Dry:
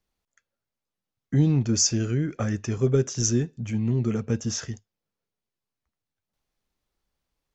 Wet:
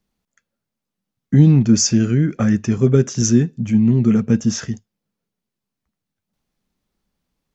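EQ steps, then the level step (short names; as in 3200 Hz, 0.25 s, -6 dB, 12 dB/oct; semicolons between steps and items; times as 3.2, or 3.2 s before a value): dynamic EQ 1800 Hz, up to +4 dB, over -41 dBFS, Q 0.85; bell 200 Hz +11 dB 1 oct; +3.5 dB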